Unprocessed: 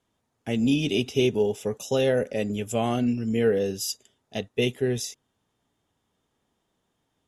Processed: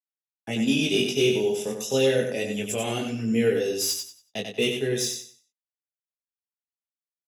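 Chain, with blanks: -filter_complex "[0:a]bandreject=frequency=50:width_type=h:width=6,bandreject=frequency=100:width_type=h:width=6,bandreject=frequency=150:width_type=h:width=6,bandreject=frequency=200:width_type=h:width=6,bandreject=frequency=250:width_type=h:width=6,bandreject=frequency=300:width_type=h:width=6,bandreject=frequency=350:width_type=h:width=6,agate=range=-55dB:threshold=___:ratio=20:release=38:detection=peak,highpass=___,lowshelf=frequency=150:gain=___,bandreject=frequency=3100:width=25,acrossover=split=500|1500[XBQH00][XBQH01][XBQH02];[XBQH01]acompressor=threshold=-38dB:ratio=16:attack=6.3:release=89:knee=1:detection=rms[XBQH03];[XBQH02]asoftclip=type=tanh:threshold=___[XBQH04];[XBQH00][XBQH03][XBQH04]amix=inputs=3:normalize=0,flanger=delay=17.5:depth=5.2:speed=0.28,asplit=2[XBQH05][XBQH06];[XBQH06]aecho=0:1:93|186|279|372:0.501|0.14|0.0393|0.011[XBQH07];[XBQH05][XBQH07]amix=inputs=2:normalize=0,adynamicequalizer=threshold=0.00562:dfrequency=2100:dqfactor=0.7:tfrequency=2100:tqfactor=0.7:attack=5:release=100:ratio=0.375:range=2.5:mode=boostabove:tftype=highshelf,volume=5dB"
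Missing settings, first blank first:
-46dB, 97, -7, -26.5dB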